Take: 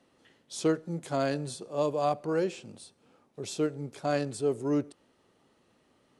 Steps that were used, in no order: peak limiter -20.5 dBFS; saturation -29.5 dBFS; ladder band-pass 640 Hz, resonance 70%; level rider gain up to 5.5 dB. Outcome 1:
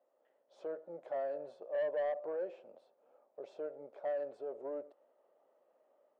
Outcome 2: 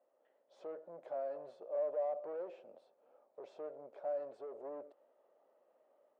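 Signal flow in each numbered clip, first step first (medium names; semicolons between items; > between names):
level rider > peak limiter > ladder band-pass > saturation; level rider > peak limiter > saturation > ladder band-pass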